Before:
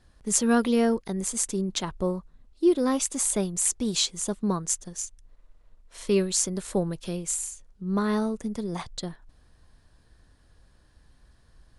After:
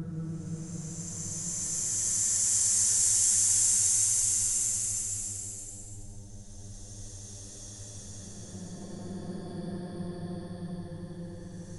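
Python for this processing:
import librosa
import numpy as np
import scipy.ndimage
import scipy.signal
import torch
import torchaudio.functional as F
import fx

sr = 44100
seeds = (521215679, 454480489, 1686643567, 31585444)

y = fx.dmg_buzz(x, sr, base_hz=100.0, harmonics=9, level_db=-48.0, tilt_db=-9, odd_only=False)
y = fx.paulstretch(y, sr, seeds[0], factor=39.0, window_s=0.1, from_s=4.63)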